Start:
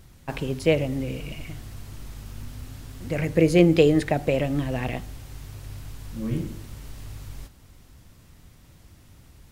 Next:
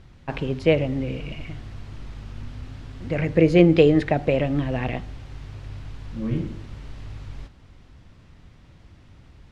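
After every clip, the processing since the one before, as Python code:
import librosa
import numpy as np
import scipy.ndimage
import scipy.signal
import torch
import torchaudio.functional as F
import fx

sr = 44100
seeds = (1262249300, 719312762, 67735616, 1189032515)

y = scipy.signal.sosfilt(scipy.signal.butter(2, 3700.0, 'lowpass', fs=sr, output='sos'), x)
y = F.gain(torch.from_numpy(y), 2.0).numpy()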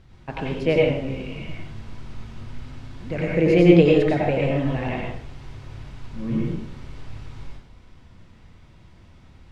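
y = fx.rev_plate(x, sr, seeds[0], rt60_s=0.54, hf_ratio=0.85, predelay_ms=80, drr_db=-3.0)
y = F.gain(torch.from_numpy(y), -3.5).numpy()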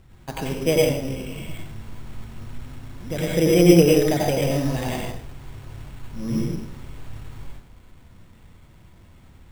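y = np.repeat(x[::8], 8)[:len(x)]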